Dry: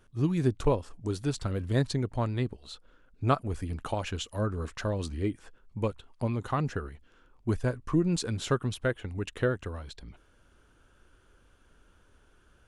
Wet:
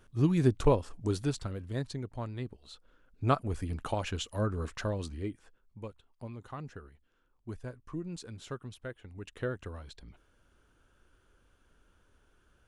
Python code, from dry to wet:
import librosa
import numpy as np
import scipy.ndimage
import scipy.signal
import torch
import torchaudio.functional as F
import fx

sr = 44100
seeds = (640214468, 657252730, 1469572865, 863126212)

y = fx.gain(x, sr, db=fx.line((1.18, 1.0), (1.61, -8.5), (2.39, -8.5), (3.39, -1.0), (4.76, -1.0), (5.84, -13.0), (8.98, -13.0), (9.65, -5.0)))